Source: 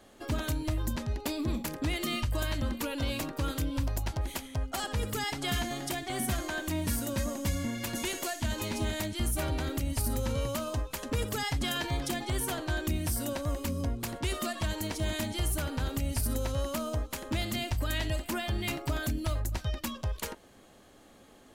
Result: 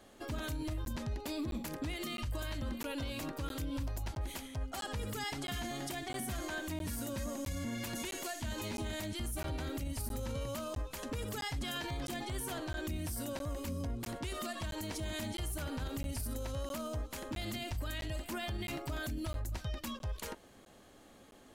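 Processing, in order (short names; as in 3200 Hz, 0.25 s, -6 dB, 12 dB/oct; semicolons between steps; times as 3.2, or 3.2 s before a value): limiter -28.5 dBFS, peak gain reduction 8 dB; crackling interface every 0.66 s, samples 512, zero, from 0.85; gain -2 dB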